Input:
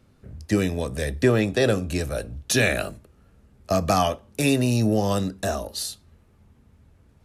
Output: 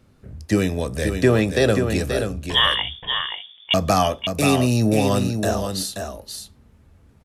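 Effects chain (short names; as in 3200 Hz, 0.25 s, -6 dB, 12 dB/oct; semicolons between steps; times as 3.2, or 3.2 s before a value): 2.47–3.74 inverted band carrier 3500 Hz; echo 0.53 s -6.5 dB; gain +2.5 dB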